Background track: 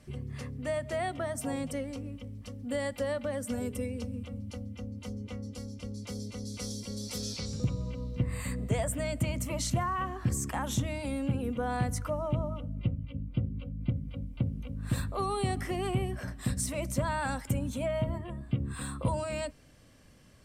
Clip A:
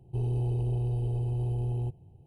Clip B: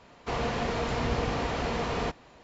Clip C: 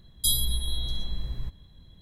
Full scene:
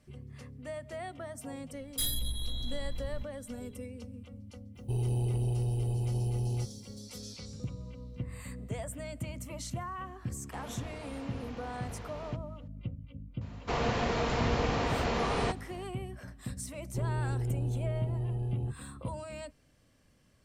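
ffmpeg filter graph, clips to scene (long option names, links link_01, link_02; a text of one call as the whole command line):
ffmpeg -i bed.wav -i cue0.wav -i cue1.wav -i cue2.wav -filter_complex "[1:a]asplit=2[link_01][link_02];[2:a]asplit=2[link_03][link_04];[0:a]volume=-8dB[link_05];[3:a]asoftclip=type=tanh:threshold=-20dB[link_06];[link_01]crystalizer=i=4:c=0[link_07];[link_06]atrim=end=2.01,asetpts=PTS-STARTPTS,volume=-5dB,afade=type=in:duration=0.004:curve=hsin,afade=type=out:start_time=2.006:duration=0.004:curve=hsin,adelay=1740[link_08];[link_07]atrim=end=2.26,asetpts=PTS-STARTPTS,volume=-1.5dB,afade=type=in:duration=0.004:curve=hsin,afade=type=out:start_time=2.256:duration=0.004:curve=hsin,adelay=4750[link_09];[link_03]atrim=end=2.43,asetpts=PTS-STARTPTS,volume=-16.5dB,afade=type=in:duration=0.004:curve=hsin,afade=type=out:start_time=2.426:duration=0.004:curve=hsin,adelay=10250[link_10];[link_04]atrim=end=2.43,asetpts=PTS-STARTPTS,volume=-0.5dB,afade=type=in:duration=0.004:curve=hsin,afade=type=out:start_time=2.426:duration=0.004:curve=hsin,adelay=13410[link_11];[link_02]atrim=end=2.26,asetpts=PTS-STARTPTS,volume=-3.5dB,afade=type=in:duration=0.004:curve=hsin,afade=type=out:start_time=2.256:duration=0.004:curve=hsin,adelay=16810[link_12];[link_05][link_08][link_09][link_10][link_11][link_12]amix=inputs=6:normalize=0" out.wav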